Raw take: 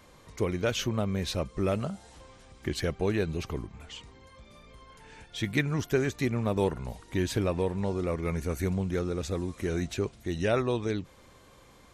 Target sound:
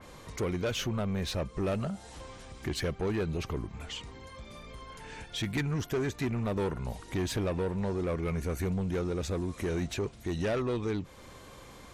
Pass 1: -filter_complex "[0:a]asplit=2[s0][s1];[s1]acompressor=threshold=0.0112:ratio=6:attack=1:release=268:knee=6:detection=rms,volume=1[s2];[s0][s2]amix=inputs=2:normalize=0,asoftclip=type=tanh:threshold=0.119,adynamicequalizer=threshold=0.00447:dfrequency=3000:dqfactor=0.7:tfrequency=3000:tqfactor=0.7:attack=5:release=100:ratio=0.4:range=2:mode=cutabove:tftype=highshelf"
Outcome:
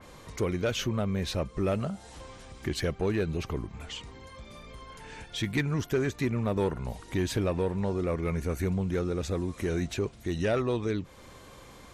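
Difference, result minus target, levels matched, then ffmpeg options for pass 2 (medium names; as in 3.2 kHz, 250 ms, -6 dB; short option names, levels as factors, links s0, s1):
saturation: distortion -8 dB
-filter_complex "[0:a]asplit=2[s0][s1];[s1]acompressor=threshold=0.0112:ratio=6:attack=1:release=268:knee=6:detection=rms,volume=1[s2];[s0][s2]amix=inputs=2:normalize=0,asoftclip=type=tanh:threshold=0.0531,adynamicequalizer=threshold=0.00447:dfrequency=3000:dqfactor=0.7:tfrequency=3000:tqfactor=0.7:attack=5:release=100:ratio=0.4:range=2:mode=cutabove:tftype=highshelf"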